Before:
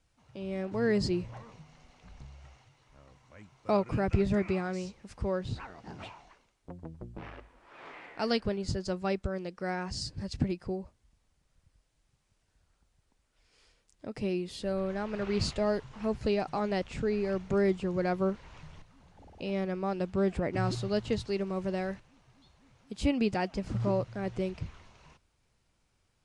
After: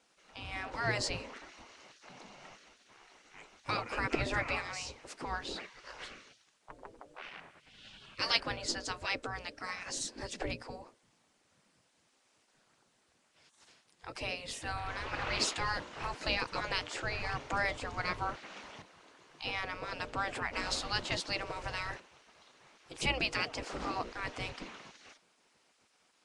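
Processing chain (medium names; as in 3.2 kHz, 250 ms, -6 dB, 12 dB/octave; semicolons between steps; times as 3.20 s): hum notches 60/120/180/240/300/360/420/480/540/600 Hz; spectral gate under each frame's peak -15 dB weak; trim +8.5 dB; Nellymoser 44 kbps 22.05 kHz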